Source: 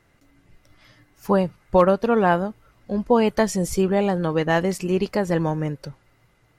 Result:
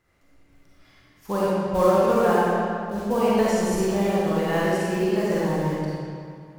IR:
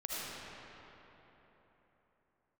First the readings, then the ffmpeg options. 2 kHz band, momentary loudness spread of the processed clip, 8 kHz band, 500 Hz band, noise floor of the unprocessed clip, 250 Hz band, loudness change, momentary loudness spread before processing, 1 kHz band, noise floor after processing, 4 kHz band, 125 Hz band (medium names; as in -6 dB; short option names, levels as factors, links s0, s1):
-1.5 dB, 9 LU, -1.5 dB, -0.5 dB, -61 dBFS, -1.5 dB, -1.0 dB, 11 LU, -0.5 dB, -58 dBFS, -0.5 dB, -2.0 dB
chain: -filter_complex "[0:a]acrusher=bits=5:mode=log:mix=0:aa=0.000001[s0];[1:a]atrim=start_sample=2205,asetrate=79380,aresample=44100[s1];[s0][s1]afir=irnorm=-1:irlink=0"